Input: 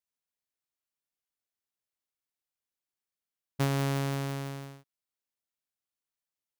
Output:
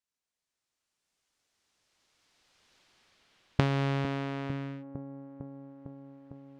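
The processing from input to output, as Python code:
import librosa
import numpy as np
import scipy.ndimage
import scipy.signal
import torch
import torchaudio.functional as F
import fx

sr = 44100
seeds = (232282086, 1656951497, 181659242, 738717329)

y = fx.recorder_agc(x, sr, target_db=-29.0, rise_db_per_s=11.0, max_gain_db=30)
y = fx.echo_wet_lowpass(y, sr, ms=453, feedback_pct=75, hz=580.0, wet_db=-11.0)
y = fx.filter_sweep_lowpass(y, sr, from_hz=7500.0, to_hz=2200.0, start_s=1.13, end_s=5.04, q=1.0)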